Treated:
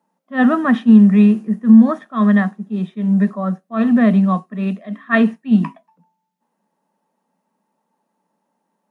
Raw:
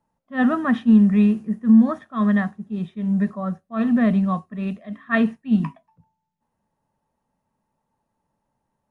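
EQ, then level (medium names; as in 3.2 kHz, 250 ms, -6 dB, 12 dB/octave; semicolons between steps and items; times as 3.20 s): elliptic high-pass 180 Hz; +6.0 dB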